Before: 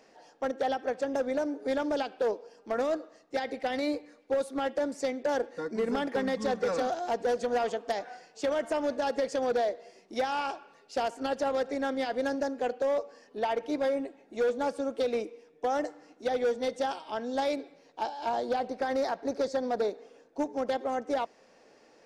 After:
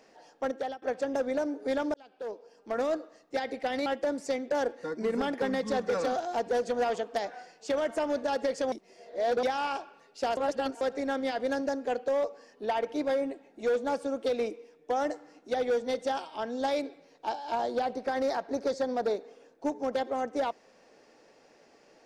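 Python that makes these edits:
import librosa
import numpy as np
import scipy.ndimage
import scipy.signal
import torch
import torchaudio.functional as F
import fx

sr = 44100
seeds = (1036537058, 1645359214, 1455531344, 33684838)

y = fx.edit(x, sr, fx.fade_out_to(start_s=0.5, length_s=0.32, floor_db=-20.0),
    fx.fade_in_span(start_s=1.94, length_s=0.91),
    fx.cut(start_s=3.86, length_s=0.74),
    fx.reverse_span(start_s=9.46, length_s=0.71),
    fx.reverse_span(start_s=11.11, length_s=0.44), tone=tone)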